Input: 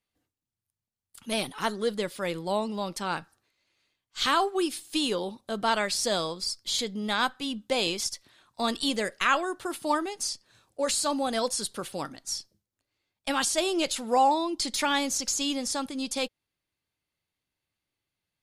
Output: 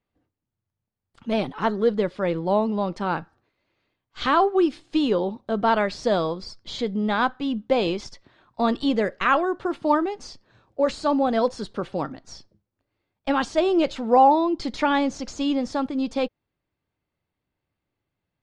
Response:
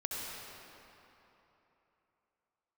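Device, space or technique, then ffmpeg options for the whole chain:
through cloth: -af "lowpass=5900,lowpass=7400,highshelf=frequency=2200:gain=-17.5,volume=8.5dB"

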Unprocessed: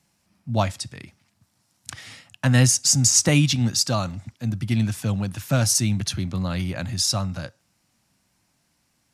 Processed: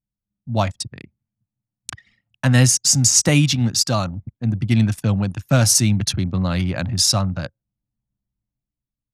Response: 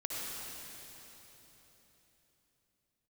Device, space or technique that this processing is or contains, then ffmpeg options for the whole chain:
voice memo with heavy noise removal: -af "anlmdn=6.31,dynaudnorm=framelen=150:gausssize=9:maxgain=6dB"

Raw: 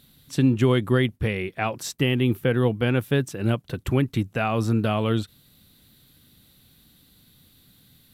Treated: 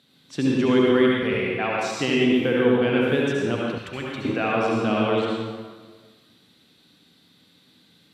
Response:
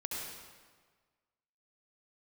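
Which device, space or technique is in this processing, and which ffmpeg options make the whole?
supermarket ceiling speaker: -filter_complex "[0:a]highpass=220,lowpass=5500[link_01];[1:a]atrim=start_sample=2205[link_02];[link_01][link_02]afir=irnorm=-1:irlink=0,asettb=1/sr,asplit=3[link_03][link_04][link_05];[link_03]atrim=end=3.784[link_06];[link_04]atrim=start=3.78:end=4.25,asetpts=PTS-STARTPTS,afade=type=in:duration=0.004:curve=qsin,afade=type=out:start_time=0.466:duration=0.004:curve=qsin,equalizer=frequency=310:width_type=o:width=2.7:gain=-11.5[link_07];[link_05]atrim=start=4.246[link_08];[link_06][link_07]acrossfade=duration=0.004:curve1=hsin:curve2=qsin[link_09];[link_09][link_08]acrossfade=duration=0.004:curve1=qsin:curve2=hsin,volume=2dB"

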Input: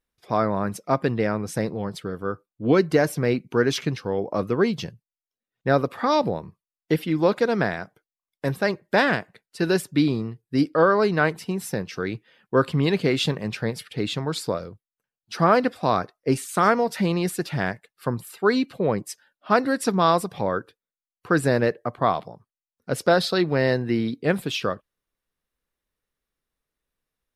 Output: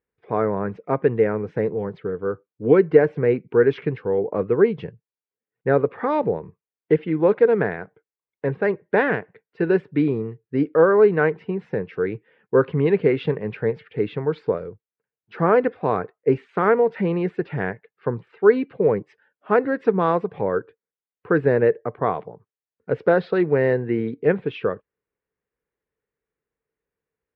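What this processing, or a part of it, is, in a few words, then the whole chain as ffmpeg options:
bass cabinet: -af "highpass=69,equalizer=frequency=240:width_type=q:width=4:gain=-3,equalizer=frequency=440:width_type=q:width=4:gain=10,equalizer=frequency=650:width_type=q:width=4:gain=-4,equalizer=frequency=1200:width_type=q:width=4:gain=-4,lowpass=frequency=2300:width=0.5412,lowpass=frequency=2300:width=1.3066"

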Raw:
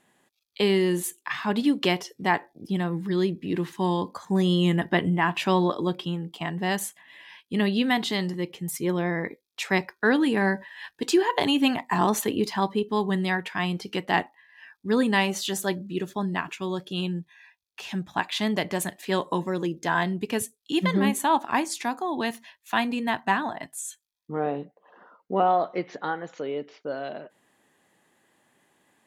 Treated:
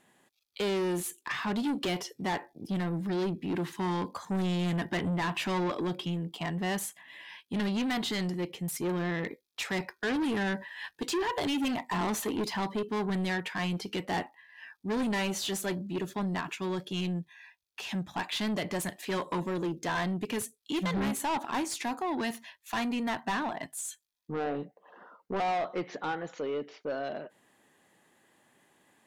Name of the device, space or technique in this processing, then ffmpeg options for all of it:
saturation between pre-emphasis and de-emphasis: -af "highshelf=frequency=9900:gain=11,asoftclip=type=tanh:threshold=-27dB,highshelf=frequency=9900:gain=-11"

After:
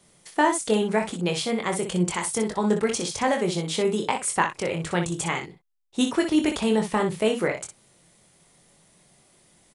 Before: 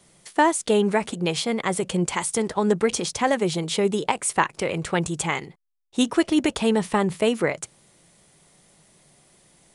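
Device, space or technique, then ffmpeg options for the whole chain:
slapback doubling: -filter_complex "[0:a]asplit=3[link_01][link_02][link_03];[link_02]adelay=23,volume=-6dB[link_04];[link_03]adelay=61,volume=-8dB[link_05];[link_01][link_04][link_05]amix=inputs=3:normalize=0,volume=-3dB"

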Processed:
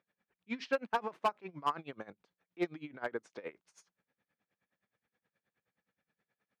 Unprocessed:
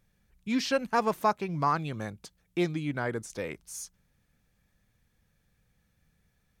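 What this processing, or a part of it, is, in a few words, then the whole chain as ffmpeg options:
helicopter radio: -af "highpass=320,lowpass=2600,aeval=exprs='val(0)*pow(10,-22*(0.5-0.5*cos(2*PI*9.5*n/s))/20)':channel_layout=same,asoftclip=type=hard:threshold=-23.5dB"

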